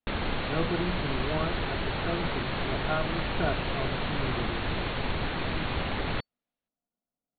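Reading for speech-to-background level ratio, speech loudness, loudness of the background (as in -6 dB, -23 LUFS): -4.0 dB, -35.5 LUFS, -31.5 LUFS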